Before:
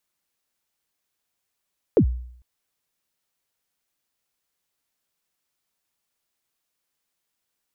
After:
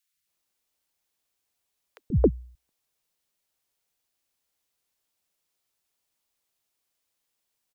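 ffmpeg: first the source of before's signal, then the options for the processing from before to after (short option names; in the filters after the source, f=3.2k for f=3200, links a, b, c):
-f lavfi -i "aevalsrc='0.316*pow(10,-3*t/0.65)*sin(2*PI*(530*0.084/log(61/530)*(exp(log(61/530)*min(t,0.084)/0.084)-1)+61*max(t-0.084,0)))':d=0.45:s=44100"
-filter_complex "[0:a]acrossover=split=200|1500[a][b][c];[a]adelay=130[d];[b]adelay=270[e];[d][e][c]amix=inputs=3:normalize=0"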